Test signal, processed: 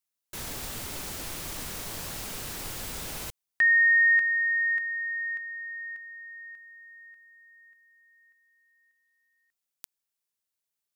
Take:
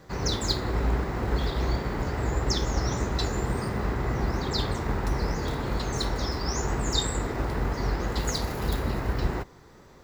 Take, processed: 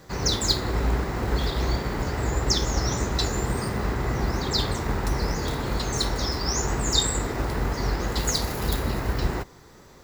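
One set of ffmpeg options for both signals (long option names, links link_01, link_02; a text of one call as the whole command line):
ffmpeg -i in.wav -af "highshelf=frequency=4100:gain=7.5,volume=1.5dB" out.wav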